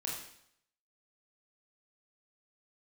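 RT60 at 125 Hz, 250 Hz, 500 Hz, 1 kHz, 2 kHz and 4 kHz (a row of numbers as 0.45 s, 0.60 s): 0.70 s, 0.70 s, 0.70 s, 0.70 s, 0.70 s, 0.70 s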